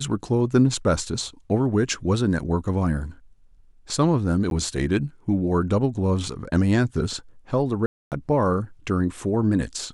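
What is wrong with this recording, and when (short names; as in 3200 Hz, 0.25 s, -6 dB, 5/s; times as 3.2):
4.5–4.51 gap 12 ms
7.86–8.12 gap 0.258 s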